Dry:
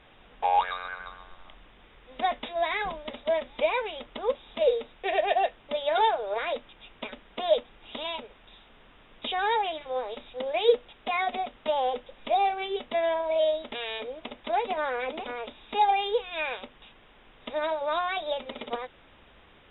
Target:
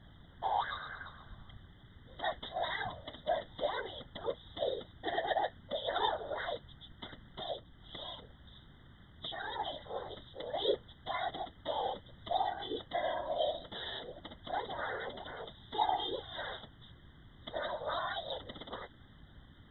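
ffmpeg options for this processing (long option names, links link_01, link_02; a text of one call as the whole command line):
ffmpeg -i in.wav -filter_complex "[0:a]equalizer=frequency=250:width_type=o:width=1:gain=-5,equalizer=frequency=500:width_type=o:width=1:gain=-6,equalizer=frequency=1000:width_type=o:width=1:gain=-5,asplit=3[link_01][link_02][link_03];[link_01]afade=type=out:start_time=7.42:duration=0.02[link_04];[link_02]acompressor=threshold=-39dB:ratio=2,afade=type=in:start_time=7.42:duration=0.02,afade=type=out:start_time=9.58:duration=0.02[link_05];[link_03]afade=type=in:start_time=9.58:duration=0.02[link_06];[link_04][link_05][link_06]amix=inputs=3:normalize=0,aeval=exprs='val(0)+0.00224*(sin(2*PI*60*n/s)+sin(2*PI*2*60*n/s)/2+sin(2*PI*3*60*n/s)/3+sin(2*PI*4*60*n/s)/4+sin(2*PI*5*60*n/s)/5)':channel_layout=same,flanger=delay=1.2:depth=2.3:regen=-77:speed=0.72:shape=sinusoidal,afftfilt=real='hypot(re,im)*cos(2*PI*random(0))':imag='hypot(re,im)*sin(2*PI*random(1))':win_size=512:overlap=0.75,asuperstop=centerf=2500:order=12:qfactor=2.5,volume=7dB" out.wav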